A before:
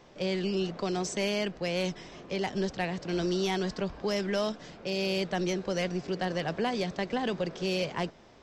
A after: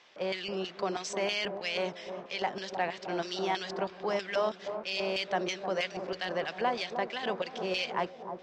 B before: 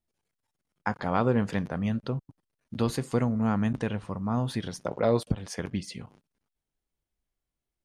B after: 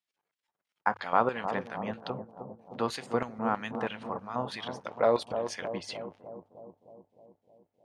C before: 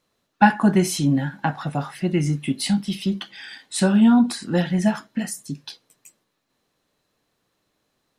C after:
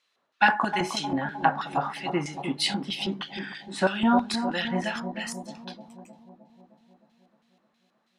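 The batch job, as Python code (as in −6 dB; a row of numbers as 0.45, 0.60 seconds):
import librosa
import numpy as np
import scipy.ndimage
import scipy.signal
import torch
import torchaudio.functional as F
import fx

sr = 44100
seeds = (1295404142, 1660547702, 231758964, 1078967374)

y = fx.filter_lfo_bandpass(x, sr, shape='square', hz=3.1, low_hz=980.0, high_hz=2900.0, q=1.0)
y = fx.hum_notches(y, sr, base_hz=50, count=2)
y = fx.echo_bbd(y, sr, ms=308, stages=2048, feedback_pct=62, wet_db=-8)
y = y * 10.0 ** (4.5 / 20.0)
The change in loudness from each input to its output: −2.0, −3.0, −6.0 LU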